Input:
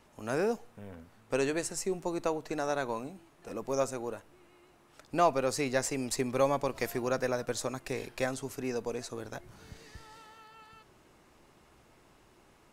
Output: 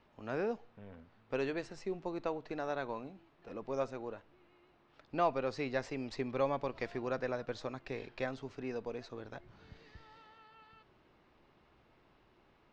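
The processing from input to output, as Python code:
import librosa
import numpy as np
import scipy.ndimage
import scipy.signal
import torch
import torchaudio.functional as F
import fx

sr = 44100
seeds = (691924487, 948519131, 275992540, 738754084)

y = scipy.signal.sosfilt(scipy.signal.butter(4, 4300.0, 'lowpass', fs=sr, output='sos'), x)
y = y * 10.0 ** (-5.5 / 20.0)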